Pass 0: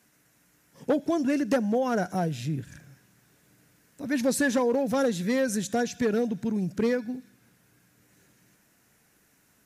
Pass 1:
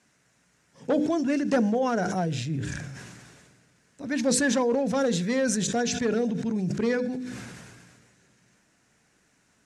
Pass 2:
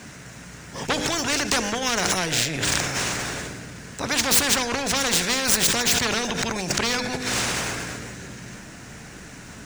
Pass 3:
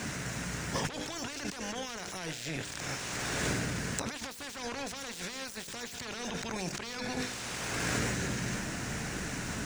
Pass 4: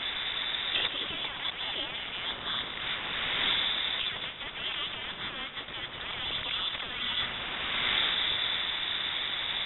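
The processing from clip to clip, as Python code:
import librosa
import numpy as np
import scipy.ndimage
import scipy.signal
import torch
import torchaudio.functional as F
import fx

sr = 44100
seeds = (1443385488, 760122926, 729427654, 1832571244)

y1 = scipy.signal.sosfilt(scipy.signal.butter(4, 8600.0, 'lowpass', fs=sr, output='sos'), x)
y1 = fx.hum_notches(y1, sr, base_hz=50, count=10)
y1 = fx.sustainer(y1, sr, db_per_s=31.0)
y2 = scipy.ndimage.median_filter(y1, 3, mode='constant')
y2 = fx.low_shelf(y2, sr, hz=150.0, db=8.5)
y2 = fx.spectral_comp(y2, sr, ratio=4.0)
y2 = F.gain(torch.from_numpy(y2), 7.0).numpy()
y3 = fx.over_compress(y2, sr, threshold_db=-34.0, ratio=-1.0)
y3 = F.gain(torch.from_numpy(y3), -3.5).numpy()
y4 = fx.cvsd(y3, sr, bps=32000)
y4 = fx.freq_invert(y4, sr, carrier_hz=3700)
y4 = fx.echo_split(y4, sr, split_hz=1800.0, low_ms=105, high_ms=174, feedback_pct=52, wet_db=-11.5)
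y4 = F.gain(torch.from_numpy(y4), 4.0).numpy()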